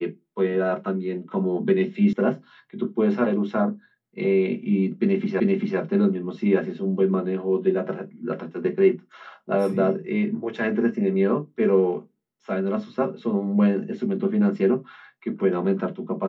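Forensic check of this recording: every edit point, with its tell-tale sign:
2.13 s: sound stops dead
5.40 s: repeat of the last 0.39 s

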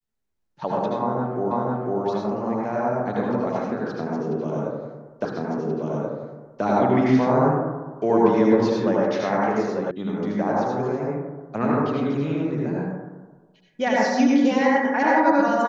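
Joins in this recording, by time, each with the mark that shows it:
1.51 s: repeat of the last 0.5 s
5.25 s: repeat of the last 1.38 s
9.91 s: sound stops dead

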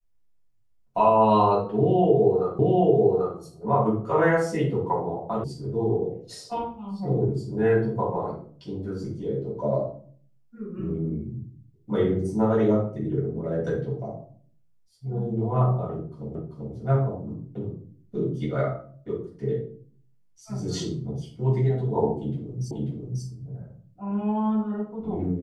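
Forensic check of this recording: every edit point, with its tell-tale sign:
2.59 s: repeat of the last 0.79 s
5.44 s: sound stops dead
16.35 s: repeat of the last 0.39 s
22.71 s: repeat of the last 0.54 s

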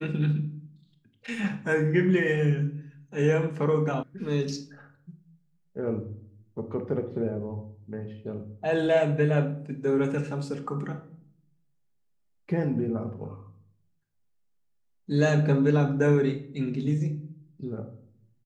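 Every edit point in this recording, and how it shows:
4.03 s: sound stops dead

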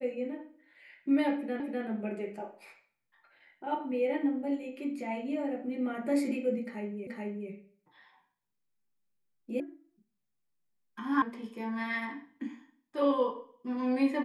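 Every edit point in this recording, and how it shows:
1.60 s: repeat of the last 0.25 s
7.07 s: repeat of the last 0.43 s
9.60 s: sound stops dead
11.22 s: sound stops dead

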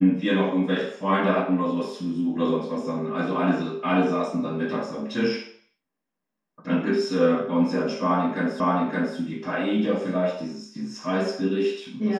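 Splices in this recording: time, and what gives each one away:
8.60 s: repeat of the last 0.57 s

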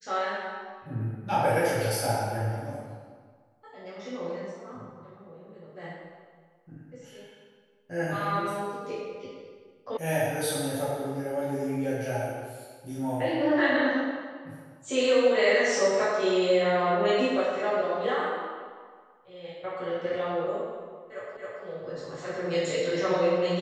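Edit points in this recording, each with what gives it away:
9.97 s: sound stops dead
21.37 s: repeat of the last 0.27 s

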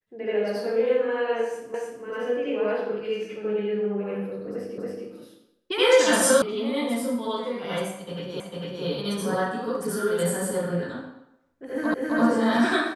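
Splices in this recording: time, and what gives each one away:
1.74 s: repeat of the last 0.3 s
4.78 s: repeat of the last 0.28 s
6.42 s: sound stops dead
8.40 s: repeat of the last 0.45 s
11.94 s: repeat of the last 0.26 s

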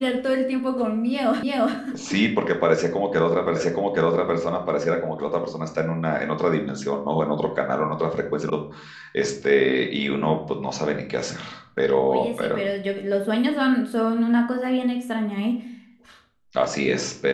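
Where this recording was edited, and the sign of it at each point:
1.43 s: repeat of the last 0.34 s
3.56 s: repeat of the last 0.82 s
8.50 s: sound stops dead

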